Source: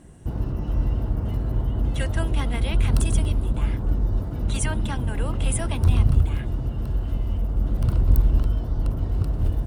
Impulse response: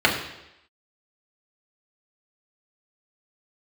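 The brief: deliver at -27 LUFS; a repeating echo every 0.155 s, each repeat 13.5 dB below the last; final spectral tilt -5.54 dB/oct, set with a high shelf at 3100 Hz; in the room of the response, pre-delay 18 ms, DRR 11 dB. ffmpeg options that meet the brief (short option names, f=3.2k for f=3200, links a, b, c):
-filter_complex "[0:a]highshelf=f=3.1k:g=4.5,aecho=1:1:155|310:0.211|0.0444,asplit=2[a][b];[1:a]atrim=start_sample=2205,adelay=18[c];[b][c]afir=irnorm=-1:irlink=0,volume=-31dB[d];[a][d]amix=inputs=2:normalize=0,volume=-3dB"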